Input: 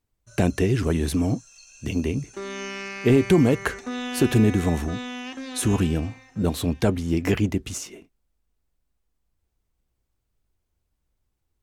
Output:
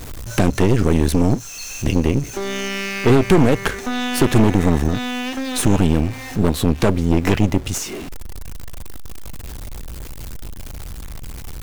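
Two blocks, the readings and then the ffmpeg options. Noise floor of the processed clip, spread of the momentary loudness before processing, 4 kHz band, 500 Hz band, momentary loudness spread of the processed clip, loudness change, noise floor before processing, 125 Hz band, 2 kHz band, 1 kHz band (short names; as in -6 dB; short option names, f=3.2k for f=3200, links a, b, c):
-32 dBFS, 14 LU, +7.5 dB, +5.0 dB, 20 LU, +5.0 dB, -77 dBFS, +5.5 dB, +6.0 dB, +9.0 dB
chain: -filter_complex "[0:a]aeval=exprs='val(0)+0.5*0.0168*sgn(val(0))':c=same,asplit=2[a][b];[b]acompressor=threshold=-33dB:ratio=6,volume=2.5dB[c];[a][c]amix=inputs=2:normalize=0,lowshelf=f=120:g=5.5,aeval=exprs='0.596*(cos(1*acos(clip(val(0)/0.596,-1,1)))-cos(1*PI/2))+0.119*(cos(6*acos(clip(val(0)/0.596,-1,1)))-cos(6*PI/2))':c=same"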